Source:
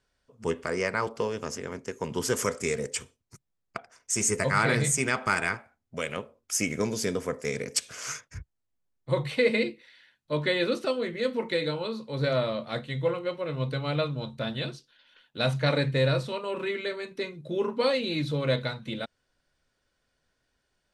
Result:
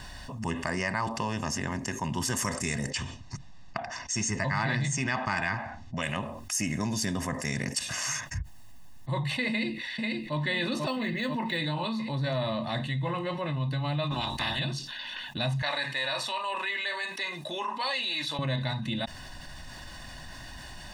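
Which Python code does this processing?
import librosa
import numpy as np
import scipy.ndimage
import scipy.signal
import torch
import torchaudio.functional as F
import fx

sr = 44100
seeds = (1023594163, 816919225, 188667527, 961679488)

y = fx.lowpass(x, sr, hz=6100.0, slope=24, at=(2.9, 6.03))
y = fx.echo_throw(y, sr, start_s=9.49, length_s=0.88, ms=490, feedback_pct=60, wet_db=-6.0)
y = fx.resample_linear(y, sr, factor=2, at=(10.88, 11.57))
y = fx.spec_clip(y, sr, under_db=27, at=(14.1, 14.58), fade=0.02)
y = fx.highpass(y, sr, hz=760.0, slope=12, at=(15.62, 18.39))
y = fx.high_shelf(y, sr, hz=9300.0, db=-3.5)
y = y + 0.86 * np.pad(y, (int(1.1 * sr / 1000.0), 0))[:len(y)]
y = fx.env_flatten(y, sr, amount_pct=70)
y = y * 10.0 ** (-7.0 / 20.0)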